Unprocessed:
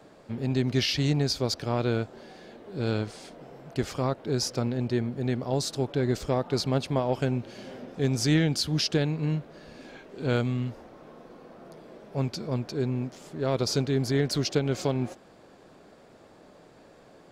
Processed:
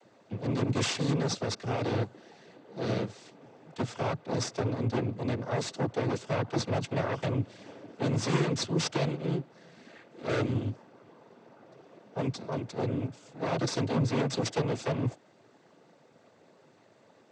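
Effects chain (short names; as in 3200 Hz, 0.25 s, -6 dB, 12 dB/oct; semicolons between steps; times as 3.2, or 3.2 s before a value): added harmonics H 6 -9 dB, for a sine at -12.5 dBFS; noise vocoder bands 16; gain -6 dB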